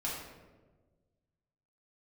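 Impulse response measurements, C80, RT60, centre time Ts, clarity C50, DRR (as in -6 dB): 4.0 dB, 1.3 s, 65 ms, 1.0 dB, -6.5 dB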